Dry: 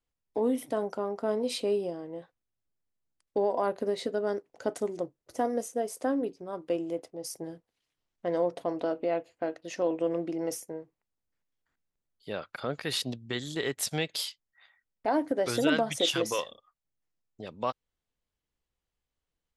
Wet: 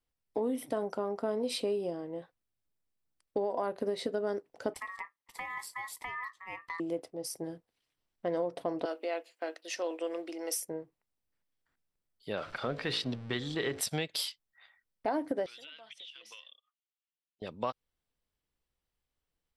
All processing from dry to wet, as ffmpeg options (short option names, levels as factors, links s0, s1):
-filter_complex "[0:a]asettb=1/sr,asplit=3[s0][s1][s2];[s0]atrim=end=4.744[s3];[s1]atrim=start=4.74:end=6.8,asetpts=PTS-STARTPTS,afade=t=in:d=0.004:c=qsin,afade=t=out:st=2.056:d=0.004:c=qsin,highpass=f=420:p=1,acompressor=threshold=0.0251:ratio=6:attack=3.2:release=140:knee=1:detection=peak,aeval=exprs='val(0)*sin(2*PI*1500*n/s)':c=same[s4];[s2]atrim=start=6.796[s5];[s3][s4]acrossfade=d=0.004:c1=hsin:c2=qsin[s6];[s6][s5]acrossfade=d=0.004:c1=qsin:c2=hsin,asettb=1/sr,asplit=3[s7][s8][s9];[s7]atrim=end=8.854[s10];[s8]atrim=start=8.85:end=10.65,asetpts=PTS-STARTPTS,afade=t=in:d=0.004:c=qsin,afade=t=out:st=1.796:d=0.004:c=qsin,highpass=f=310:w=0.5412,highpass=f=310:w=1.3066,tiltshelf=f=1500:g=-7[s11];[s9]atrim=start=10.646[s12];[s10][s11]acrossfade=d=0.004:c1=hsin:c2=qsin[s13];[s13][s12]acrossfade=d=0.004:c1=qsin:c2=hsin,asettb=1/sr,asplit=3[s14][s15][s16];[s14]atrim=end=12.374[s17];[s15]atrim=start=12.37:end=13.81,asetpts=PTS-STARTPTS,afade=t=in:d=0.004:c=qsin,afade=t=out:st=1.436:d=0.004:c=qsin,aeval=exprs='val(0)+0.5*0.00708*sgn(val(0))':c=same,lowpass=4500,bandreject=f=54.26:t=h:w=4,bandreject=f=108.52:t=h:w=4,bandreject=f=162.78:t=h:w=4,bandreject=f=217.04:t=h:w=4,bandreject=f=271.3:t=h:w=4,bandreject=f=325.56:t=h:w=4,bandreject=f=379.82:t=h:w=4,bandreject=f=434.08:t=h:w=4,bandreject=f=488.34:t=h:w=4,bandreject=f=542.6:t=h:w=4,bandreject=f=596.86:t=h:w=4,bandreject=f=651.12:t=h:w=4,bandreject=f=705.38:t=h:w=4[s18];[s16]atrim=start=13.806[s19];[s17][s18]acrossfade=d=0.004:c1=hsin:c2=qsin[s20];[s20][s19]acrossfade=d=0.004:c1=qsin:c2=hsin,asettb=1/sr,asplit=3[s21][s22][s23];[s21]atrim=end=15.464[s24];[s22]atrim=start=15.46:end=17.42,asetpts=PTS-STARTPTS,afade=t=in:d=0.004:c=qsin,afade=t=out:st=1.956:d=0.004:c=qsin,bandpass=f=3000:t=q:w=3.3,acompressor=threshold=0.00562:ratio=10:attack=3.2:release=140:knee=1:detection=peak[s25];[s23]atrim=start=17.416[s26];[s24][s25]acrossfade=d=0.004:c1=hsin:c2=qsin[s27];[s27][s26]acrossfade=d=0.004:c1=qsin:c2=hsin,bandreject=f=6700:w=7.7,acompressor=threshold=0.0398:ratio=6"